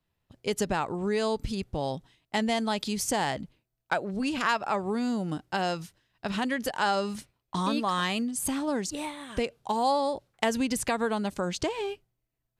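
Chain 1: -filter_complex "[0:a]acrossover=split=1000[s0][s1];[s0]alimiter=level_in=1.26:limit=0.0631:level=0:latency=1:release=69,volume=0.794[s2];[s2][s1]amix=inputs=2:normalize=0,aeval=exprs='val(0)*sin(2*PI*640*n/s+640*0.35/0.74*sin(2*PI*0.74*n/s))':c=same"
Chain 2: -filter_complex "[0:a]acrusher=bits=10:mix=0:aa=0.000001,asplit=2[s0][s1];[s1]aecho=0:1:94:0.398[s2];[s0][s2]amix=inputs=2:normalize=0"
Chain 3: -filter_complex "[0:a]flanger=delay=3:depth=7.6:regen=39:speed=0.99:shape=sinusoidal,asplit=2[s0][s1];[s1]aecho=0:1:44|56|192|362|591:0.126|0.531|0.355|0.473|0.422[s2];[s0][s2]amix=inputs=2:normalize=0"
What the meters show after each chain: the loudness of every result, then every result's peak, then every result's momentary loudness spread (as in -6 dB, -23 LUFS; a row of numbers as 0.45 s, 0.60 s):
-34.5 LUFS, -29.0 LUFS, -31.0 LUFS; -9.5 dBFS, -9.5 dBFS, -14.0 dBFS; 8 LU, 8 LU, 6 LU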